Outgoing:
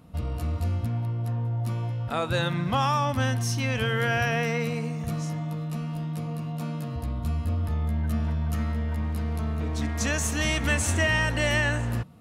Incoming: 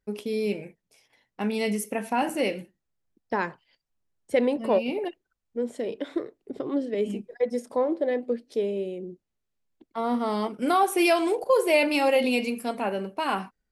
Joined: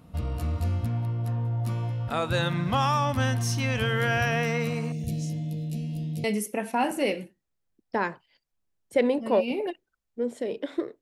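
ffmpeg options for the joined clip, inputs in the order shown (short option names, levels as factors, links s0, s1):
-filter_complex "[0:a]asettb=1/sr,asplit=3[s0][s1][s2];[s0]atrim=end=4.924[s3];[s1]atrim=start=4.92:end=6.24,asetpts=PTS-STARTPTS,afade=t=in:d=0.004:c=qsin,afade=t=out:st=1.316:d=0.004:c=qsin,asuperstop=centerf=1200:order=4:qfactor=0.53[s4];[s2]atrim=start=6.236[s5];[s3][s4]acrossfade=d=0.004:c1=hsin:c2=qsin[s6];[s6][s5]acrossfade=d=0.004:c1=qsin:c2=hsin,apad=whole_dur=11.01,atrim=end=11.01,atrim=end=6.242[s7];[1:a]atrim=start=1.618:end=6.39[s8];[s7][s8]acrossfade=d=0.004:c1=hsin:c2=hsin"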